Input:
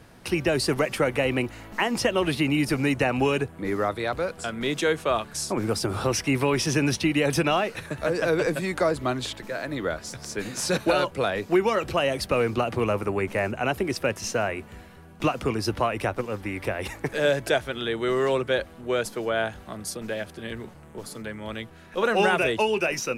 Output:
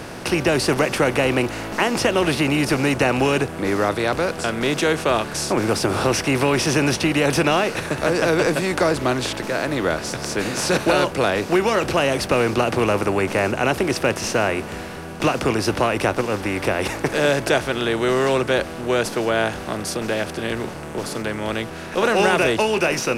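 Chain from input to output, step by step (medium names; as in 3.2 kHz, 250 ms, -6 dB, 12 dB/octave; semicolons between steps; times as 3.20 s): spectral levelling over time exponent 0.6; trim +1 dB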